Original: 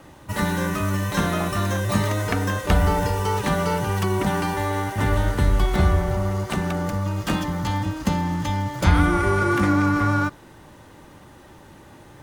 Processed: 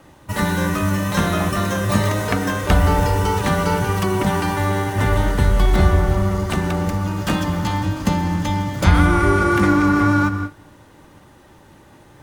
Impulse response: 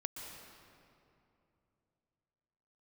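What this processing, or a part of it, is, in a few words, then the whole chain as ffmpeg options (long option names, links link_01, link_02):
keyed gated reverb: -filter_complex "[0:a]asplit=3[link_01][link_02][link_03];[1:a]atrim=start_sample=2205[link_04];[link_02][link_04]afir=irnorm=-1:irlink=0[link_05];[link_03]apad=whole_len=539176[link_06];[link_05][link_06]sidechaingate=range=-33dB:threshold=-42dB:ratio=16:detection=peak,volume=0dB[link_07];[link_01][link_07]amix=inputs=2:normalize=0,volume=-1.5dB"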